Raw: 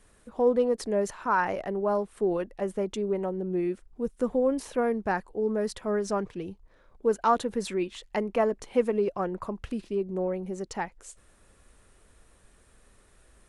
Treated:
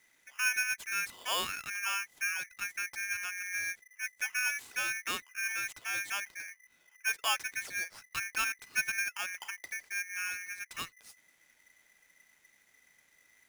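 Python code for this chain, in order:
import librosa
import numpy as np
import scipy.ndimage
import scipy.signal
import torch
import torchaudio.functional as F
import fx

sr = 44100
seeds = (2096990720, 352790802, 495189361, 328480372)

y = x * np.sign(np.sin(2.0 * np.pi * 2000.0 * np.arange(len(x)) / sr))
y = F.gain(torch.from_numpy(y), -8.0).numpy()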